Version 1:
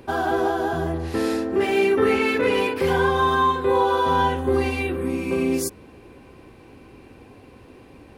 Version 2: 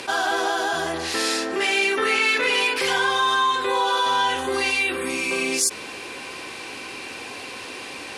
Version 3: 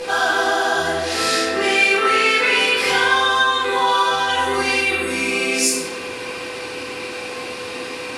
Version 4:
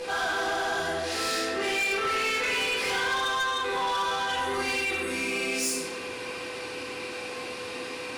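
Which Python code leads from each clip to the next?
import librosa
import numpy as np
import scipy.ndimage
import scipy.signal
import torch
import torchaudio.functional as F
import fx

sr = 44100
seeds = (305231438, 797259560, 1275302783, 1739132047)

y1 = fx.weighting(x, sr, curve='ITU-R 468')
y1 = fx.env_flatten(y1, sr, amount_pct=50)
y1 = F.gain(torch.from_numpy(y1), -2.0).numpy()
y2 = y1 + 10.0 ** (-27.0 / 20.0) * np.sin(2.0 * np.pi * 500.0 * np.arange(len(y1)) / sr)
y2 = fx.room_shoebox(y2, sr, seeds[0], volume_m3=510.0, walls='mixed', distance_m=3.9)
y2 = F.gain(torch.from_numpy(y2), -4.5).numpy()
y3 = 10.0 ** (-17.0 / 20.0) * np.tanh(y2 / 10.0 ** (-17.0 / 20.0))
y3 = F.gain(torch.from_numpy(y3), -6.5).numpy()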